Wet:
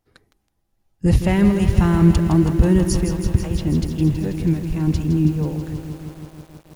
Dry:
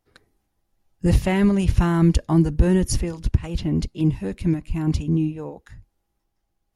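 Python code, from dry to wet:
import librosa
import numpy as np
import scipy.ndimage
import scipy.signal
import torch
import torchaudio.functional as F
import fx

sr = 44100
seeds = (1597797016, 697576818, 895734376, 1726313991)

y = fx.peak_eq(x, sr, hz=140.0, db=fx.steps((0.0, 3.0), (5.25, 11.0)), octaves=2.2)
y = fx.echo_crushed(y, sr, ms=162, feedback_pct=80, bits=7, wet_db=-9)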